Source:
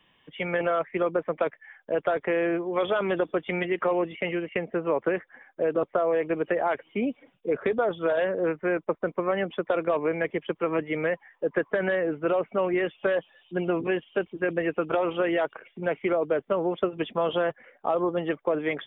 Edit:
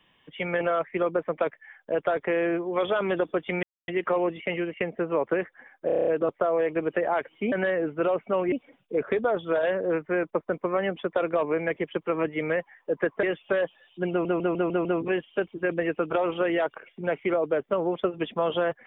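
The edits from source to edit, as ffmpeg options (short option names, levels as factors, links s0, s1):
-filter_complex "[0:a]asplit=17[s0][s1][s2][s3][s4][s5][s6][s7][s8][s9][s10][s11][s12][s13][s14][s15][s16];[s0]atrim=end=3.63,asetpts=PTS-STARTPTS,afade=t=out:st=3.626:d=0.004:c=hsin,apad=pad_dur=0.25[s17];[s1]atrim=start=3.63:end=5.642,asetpts=PTS-STARTPTS,afade=t=in:d=0.004:c=hsin[s18];[s2]atrim=start=5.608:end=5.642[s19];[s3]atrim=start=5.608:end=5.642[s20];[s4]atrim=start=5.608:end=5.642[s21];[s5]atrim=start=5.608:end=5.642[s22];[s6]atrim=start=5.608:end=5.642[s23];[s7]atrim=start=5.608:end=5.642[s24];[s8]atrim=start=5.608:end=7.062[s25];[s9]atrim=start=11.768:end=12.772[s26];[s10]atrim=start=7.058:end=11.772[s27];[s11]atrim=start=12.768:end=13.792[s28];[s12]atrim=start=13.638:end=13.792[s29];[s13]atrim=start=13.638:end=13.792[s30];[s14]atrim=start=13.638:end=13.792[s31];[s15]atrim=start=13.638:end=13.792[s32];[s16]atrim=start=13.638[s33];[s17][s18]concat=n=2:v=0:a=1[s34];[s34][s19]acrossfade=d=0.004:c1=hsin:c2=hsin[s35];[s35][s20]acrossfade=d=0.004:c1=hsin:c2=hsin[s36];[s36][s21]acrossfade=d=0.004:c1=hsin:c2=hsin[s37];[s37][s22]acrossfade=d=0.004:c1=hsin:c2=hsin[s38];[s38][s23]acrossfade=d=0.004:c1=hsin:c2=hsin[s39];[s39][s24]acrossfade=d=0.004:c1=hsin:c2=hsin[s40];[s40][s25]acrossfade=d=0.004:c1=hsin:c2=hsin[s41];[s41][s26]acrossfade=d=0.004:c1=hsin:c2=hsin[s42];[s42][s27]acrossfade=d=0.004:c1=hsin:c2=hsin[s43];[s43][s28]acrossfade=d=0.004:c1=hsin:c2=hsin[s44];[s44][s29]acrossfade=d=0.004:c1=hsin:c2=hsin[s45];[s45][s30]acrossfade=d=0.004:c1=hsin:c2=hsin[s46];[s46][s31]acrossfade=d=0.004:c1=hsin:c2=hsin[s47];[s47][s32]acrossfade=d=0.004:c1=hsin:c2=hsin[s48];[s48][s33]acrossfade=d=0.004:c1=hsin:c2=hsin"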